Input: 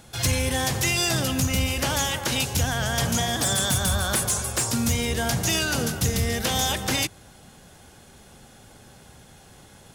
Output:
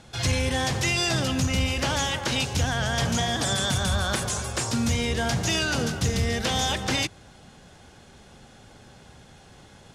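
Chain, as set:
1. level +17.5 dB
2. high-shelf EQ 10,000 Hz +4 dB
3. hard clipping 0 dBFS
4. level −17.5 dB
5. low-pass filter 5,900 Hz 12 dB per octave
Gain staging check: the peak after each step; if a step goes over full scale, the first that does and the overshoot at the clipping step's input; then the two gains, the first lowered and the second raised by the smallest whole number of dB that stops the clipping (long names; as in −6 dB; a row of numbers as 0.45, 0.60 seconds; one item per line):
+1.5, +5.0, 0.0, −17.5, −16.5 dBFS
step 1, 5.0 dB
step 1 +12.5 dB, step 4 −12.5 dB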